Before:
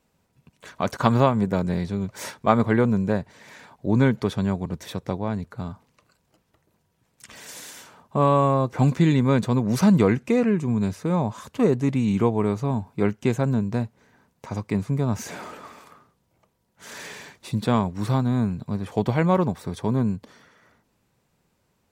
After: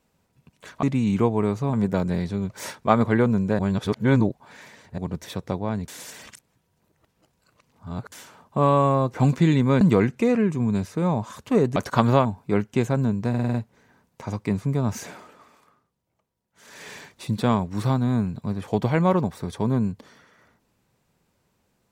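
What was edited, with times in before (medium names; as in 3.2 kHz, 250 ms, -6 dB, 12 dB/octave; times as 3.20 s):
0.83–1.32 s: swap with 11.84–12.74 s
3.18–4.57 s: reverse
5.47–7.71 s: reverse
9.40–9.89 s: delete
13.78 s: stutter 0.05 s, 6 plays
15.24–17.16 s: dip -10 dB, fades 0.32 s quadratic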